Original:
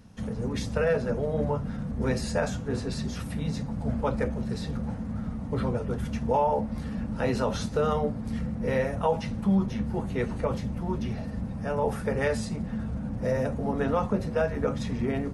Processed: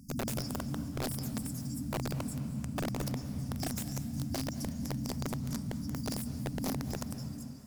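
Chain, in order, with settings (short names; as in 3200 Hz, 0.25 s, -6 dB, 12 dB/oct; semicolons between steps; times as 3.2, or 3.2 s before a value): ending faded out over 2.02 s; FFT band-reject 140–2300 Hz; in parallel at +0.5 dB: limiter -30.5 dBFS, peak gain reduction 9.5 dB; on the sum: vocal rider within 4 dB 2 s; wrapped overs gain 22.5 dB; on a send: diffused feedback echo 0.465 s, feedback 58%, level -13 dB; on the sum: speed mistake 7.5 ips tape played at 15 ips; gain -6 dB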